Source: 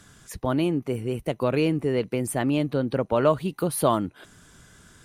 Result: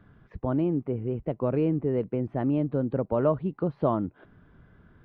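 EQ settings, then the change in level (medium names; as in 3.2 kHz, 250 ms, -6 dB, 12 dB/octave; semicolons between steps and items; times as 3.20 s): dynamic bell 2.1 kHz, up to -3 dB, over -41 dBFS, Q 0.95; distance through air 300 m; tape spacing loss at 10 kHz 40 dB; 0.0 dB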